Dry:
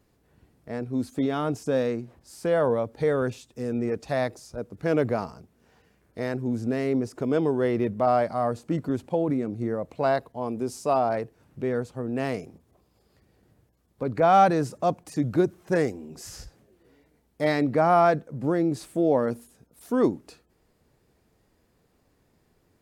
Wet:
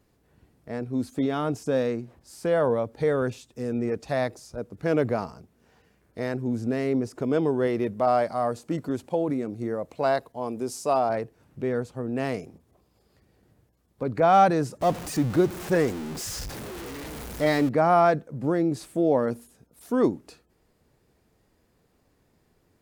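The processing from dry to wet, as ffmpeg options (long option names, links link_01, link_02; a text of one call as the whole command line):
ffmpeg -i in.wav -filter_complex "[0:a]asettb=1/sr,asplit=3[link_01][link_02][link_03];[link_01]atrim=end=7.674[link_04];[link_02]atrim=start=7.67:end=11.1,asetpts=PTS-STARTPTS,afade=type=in:duration=0.004:curve=qsin,afade=type=out:start_time=3.426:duration=0.004:curve=qsin,bass=frequency=250:gain=-4,treble=frequency=4000:gain=4[link_05];[link_03]atrim=start=11.096[link_06];[link_04][link_05]acrossfade=duration=0.004:curve1=hsin:curve2=qsin[link_07];[link_07][link_06]acrossfade=duration=0.004:curve1=qsin:curve2=hsin,asettb=1/sr,asplit=3[link_08][link_09][link_10];[link_08]atrim=end=14.814[link_11];[link_09]atrim=start=14.81:end=17.69,asetpts=PTS-STARTPTS,afade=type=in:duration=0.004:curve=qsin,afade=type=out:start_time=2.876:duration=0.004:curve=qsin,aeval=exprs='val(0)+0.5*0.0266*sgn(val(0))':channel_layout=same[link_12];[link_10]atrim=start=17.686[link_13];[link_11][link_12]acrossfade=duration=0.004:curve1=hsin:curve2=qsin[link_14];[link_14][link_13]acrossfade=duration=0.004:curve1=qsin:curve2=hsin" out.wav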